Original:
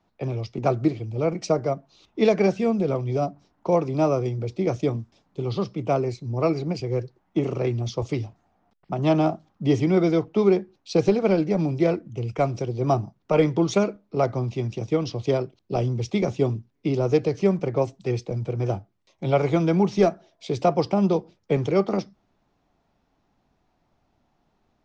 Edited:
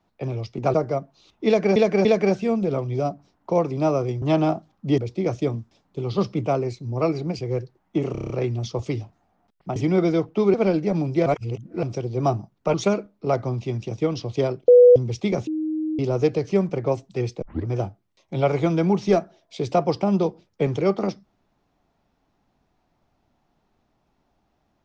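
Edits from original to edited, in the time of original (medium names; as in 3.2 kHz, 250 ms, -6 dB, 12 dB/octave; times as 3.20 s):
0.74–1.49 s: delete
2.22–2.51 s: loop, 3 plays
5.59–5.87 s: gain +4.5 dB
7.53 s: stutter 0.03 s, 7 plays
8.99–9.75 s: move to 4.39 s
10.53–11.18 s: delete
11.90–12.47 s: reverse
13.38–13.64 s: delete
15.58–15.86 s: bleep 491 Hz -7 dBFS
16.37–16.89 s: bleep 312 Hz -22.5 dBFS
18.32 s: tape start 0.25 s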